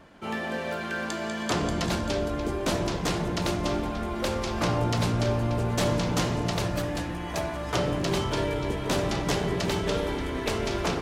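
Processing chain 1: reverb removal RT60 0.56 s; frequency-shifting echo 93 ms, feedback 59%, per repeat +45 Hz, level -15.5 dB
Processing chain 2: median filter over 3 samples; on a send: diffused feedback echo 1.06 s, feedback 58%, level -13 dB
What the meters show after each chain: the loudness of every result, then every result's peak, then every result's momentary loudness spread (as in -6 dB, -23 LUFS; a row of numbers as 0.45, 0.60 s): -29.5, -28.0 LUFS; -12.5, -13.5 dBFS; 5, 5 LU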